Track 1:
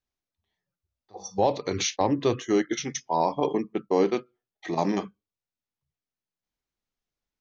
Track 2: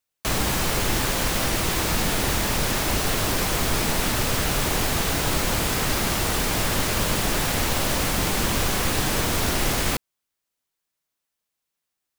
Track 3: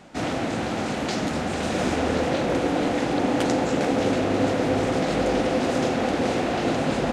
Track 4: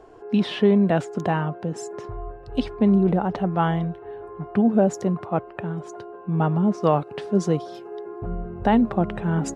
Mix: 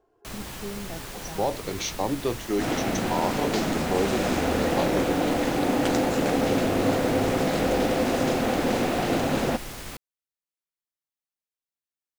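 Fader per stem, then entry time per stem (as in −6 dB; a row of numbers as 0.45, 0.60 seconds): −3.5, −14.5, −1.0, −19.5 decibels; 0.00, 0.00, 2.45, 0.00 seconds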